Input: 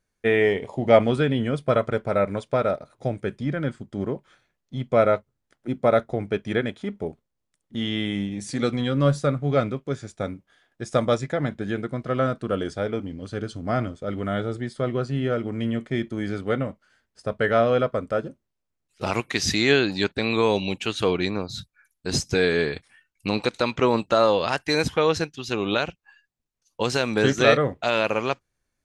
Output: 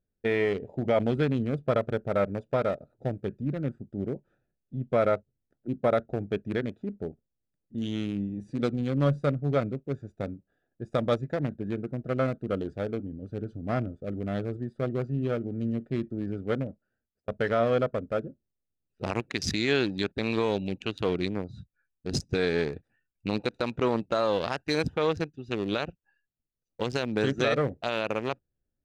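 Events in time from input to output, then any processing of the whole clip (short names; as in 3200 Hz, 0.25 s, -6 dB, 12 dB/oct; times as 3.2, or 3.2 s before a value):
16.42–17.28 fade out equal-power
whole clip: Wiener smoothing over 41 samples; limiter -11.5 dBFS; gain -3 dB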